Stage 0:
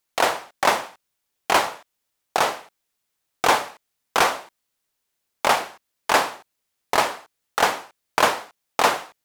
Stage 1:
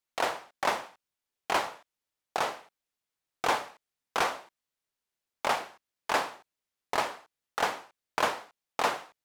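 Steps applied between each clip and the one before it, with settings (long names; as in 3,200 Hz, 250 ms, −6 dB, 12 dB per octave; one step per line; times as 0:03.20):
high-shelf EQ 7,800 Hz −6 dB
level −9 dB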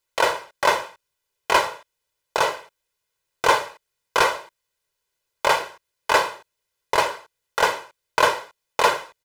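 comb filter 2 ms, depth 75%
level +7.5 dB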